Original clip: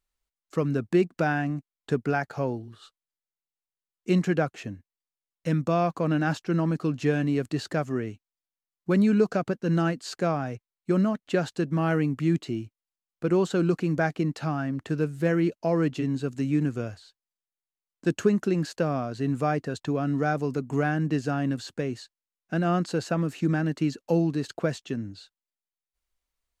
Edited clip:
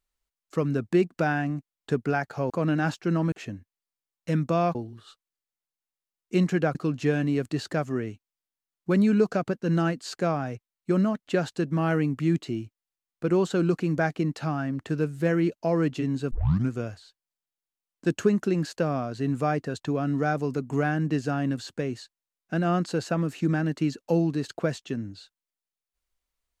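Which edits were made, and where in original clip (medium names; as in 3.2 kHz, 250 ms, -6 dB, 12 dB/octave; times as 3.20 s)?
2.50–4.50 s: swap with 5.93–6.75 s
16.31 s: tape start 0.39 s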